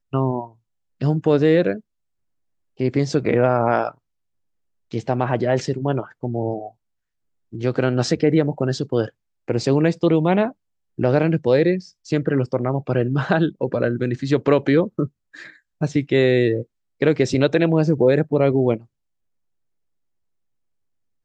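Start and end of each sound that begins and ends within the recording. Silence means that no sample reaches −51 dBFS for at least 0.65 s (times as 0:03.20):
0:02.77–0:03.98
0:04.91–0:06.73
0:07.52–0:18.86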